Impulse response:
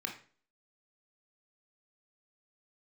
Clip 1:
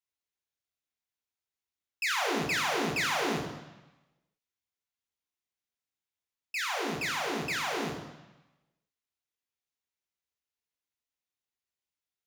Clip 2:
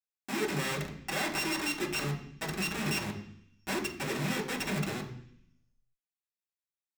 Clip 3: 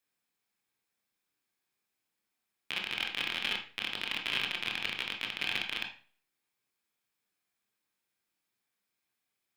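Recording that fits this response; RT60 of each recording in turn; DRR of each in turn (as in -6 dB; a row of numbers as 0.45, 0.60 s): 3; 1.0, 0.65, 0.40 s; 1.0, -3.5, 1.5 dB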